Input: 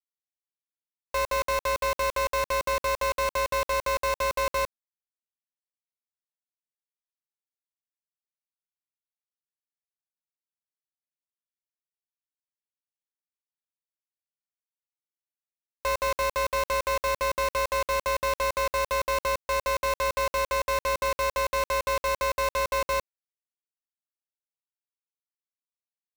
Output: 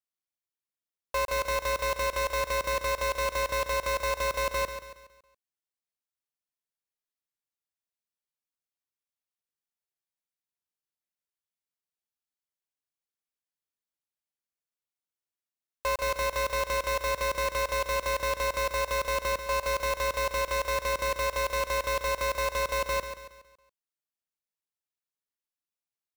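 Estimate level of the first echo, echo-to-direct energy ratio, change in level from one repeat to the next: −9.5 dB, −8.5 dB, −7.5 dB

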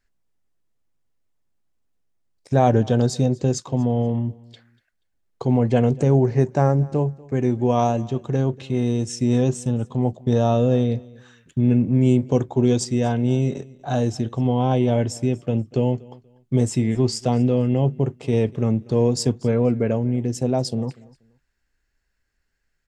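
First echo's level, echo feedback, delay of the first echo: −23.0 dB, repeats not evenly spaced, 240 ms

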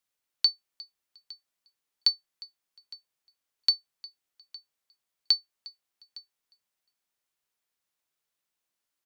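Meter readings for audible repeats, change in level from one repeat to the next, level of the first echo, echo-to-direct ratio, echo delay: 2, −13.0 dB, −21.5 dB, −21.5 dB, 356 ms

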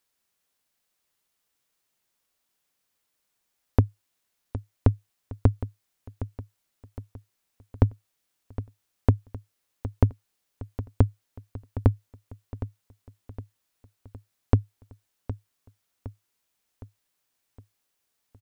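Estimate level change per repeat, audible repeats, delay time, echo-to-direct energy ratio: −6.0 dB, 4, 763 ms, −12.0 dB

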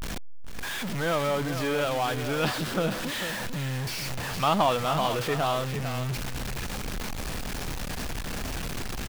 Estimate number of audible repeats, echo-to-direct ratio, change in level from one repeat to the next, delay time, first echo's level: 1, −9.5 dB, repeats not evenly spaced, 446 ms, −9.5 dB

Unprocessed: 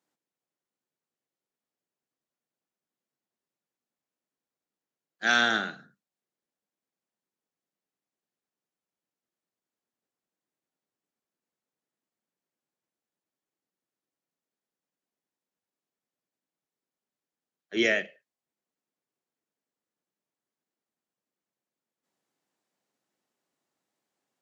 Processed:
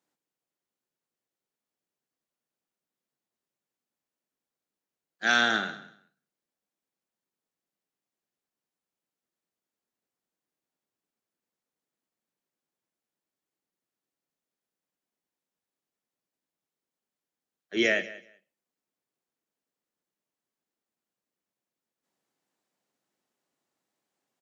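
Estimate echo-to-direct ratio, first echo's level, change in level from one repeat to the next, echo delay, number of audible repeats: −18.0 dB, −18.0 dB, −16.0 dB, 189 ms, 2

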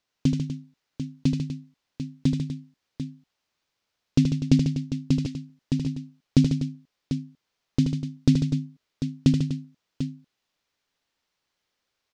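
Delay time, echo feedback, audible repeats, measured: 78 ms, repeats not evenly spaced, 4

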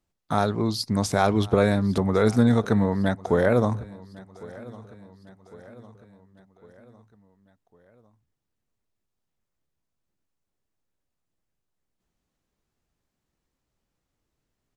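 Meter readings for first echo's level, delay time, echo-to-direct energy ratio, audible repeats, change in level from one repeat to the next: −21.0 dB, 1,104 ms, −19.5 dB, 3, −5.5 dB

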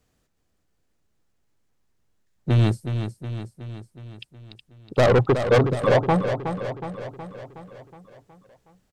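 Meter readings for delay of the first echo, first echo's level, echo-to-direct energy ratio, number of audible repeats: 368 ms, −8.5 dB, −6.5 dB, 6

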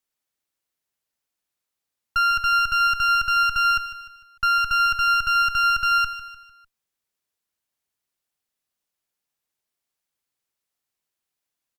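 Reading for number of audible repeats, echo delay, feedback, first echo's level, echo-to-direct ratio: 4, 150 ms, 45%, −13.0 dB, −12.0 dB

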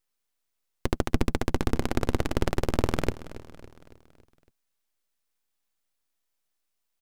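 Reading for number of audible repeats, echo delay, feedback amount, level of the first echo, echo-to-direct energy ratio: 4, 279 ms, 53%, −16.5 dB, −15.0 dB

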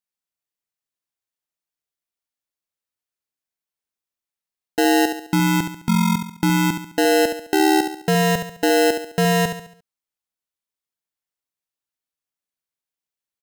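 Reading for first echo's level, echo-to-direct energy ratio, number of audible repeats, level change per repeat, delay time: −8.0 dB, −7.0 dB, 4, −7.5 dB, 70 ms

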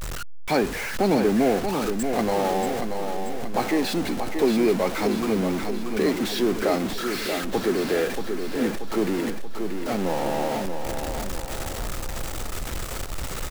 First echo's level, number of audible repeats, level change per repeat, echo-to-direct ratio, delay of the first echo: −6.5 dB, 5, −5.5 dB, −5.0 dB, 632 ms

